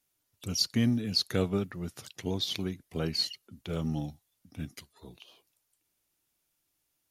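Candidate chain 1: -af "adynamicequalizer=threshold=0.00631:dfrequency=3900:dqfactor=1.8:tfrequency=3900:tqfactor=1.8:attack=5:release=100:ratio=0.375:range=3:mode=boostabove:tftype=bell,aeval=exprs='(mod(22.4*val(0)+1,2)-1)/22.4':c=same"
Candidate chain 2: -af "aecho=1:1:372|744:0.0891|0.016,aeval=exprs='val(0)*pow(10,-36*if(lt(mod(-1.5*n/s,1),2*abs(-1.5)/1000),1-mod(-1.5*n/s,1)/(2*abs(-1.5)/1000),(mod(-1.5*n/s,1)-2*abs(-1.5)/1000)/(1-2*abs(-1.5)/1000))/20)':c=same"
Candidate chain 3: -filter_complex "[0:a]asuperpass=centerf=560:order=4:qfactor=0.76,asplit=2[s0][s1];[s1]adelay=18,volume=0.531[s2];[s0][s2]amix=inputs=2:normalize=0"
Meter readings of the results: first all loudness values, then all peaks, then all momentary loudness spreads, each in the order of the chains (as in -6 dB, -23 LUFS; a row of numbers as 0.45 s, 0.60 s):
-34.5 LUFS, -39.5 LUFS, -38.5 LUFS; -27.0 dBFS, -17.0 dBFS, -19.0 dBFS; 18 LU, 18 LU, 20 LU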